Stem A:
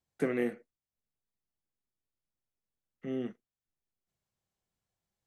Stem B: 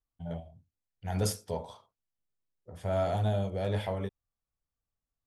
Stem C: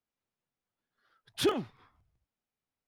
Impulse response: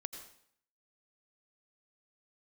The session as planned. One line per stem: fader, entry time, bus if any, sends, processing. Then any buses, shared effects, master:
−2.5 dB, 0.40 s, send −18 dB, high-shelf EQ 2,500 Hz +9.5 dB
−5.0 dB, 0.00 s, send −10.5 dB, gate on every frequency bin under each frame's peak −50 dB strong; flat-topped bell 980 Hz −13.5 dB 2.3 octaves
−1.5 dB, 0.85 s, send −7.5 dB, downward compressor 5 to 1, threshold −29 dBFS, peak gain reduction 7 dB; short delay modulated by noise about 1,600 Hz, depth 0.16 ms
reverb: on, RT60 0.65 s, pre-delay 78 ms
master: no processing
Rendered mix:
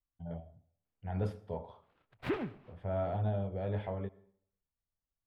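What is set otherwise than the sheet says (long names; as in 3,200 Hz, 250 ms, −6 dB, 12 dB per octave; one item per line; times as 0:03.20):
stem A: muted
stem B: missing flat-topped bell 980 Hz −13.5 dB 2.3 octaves
master: extra high-frequency loss of the air 500 metres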